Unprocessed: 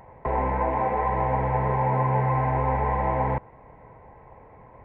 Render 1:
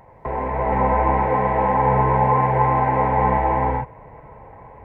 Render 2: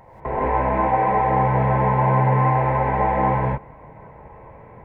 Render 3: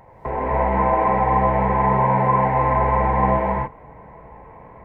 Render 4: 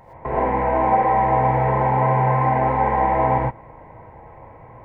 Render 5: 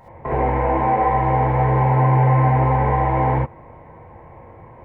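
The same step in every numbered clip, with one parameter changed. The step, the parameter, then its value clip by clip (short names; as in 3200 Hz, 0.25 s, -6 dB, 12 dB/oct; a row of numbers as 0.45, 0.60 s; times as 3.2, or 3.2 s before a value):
non-linear reverb, gate: 480, 210, 310, 140, 90 ms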